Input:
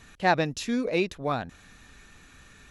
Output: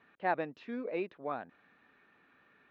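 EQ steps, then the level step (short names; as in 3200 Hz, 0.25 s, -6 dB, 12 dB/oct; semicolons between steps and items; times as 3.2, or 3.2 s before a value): BPF 290–2300 Hz; air absorption 190 m; -7.5 dB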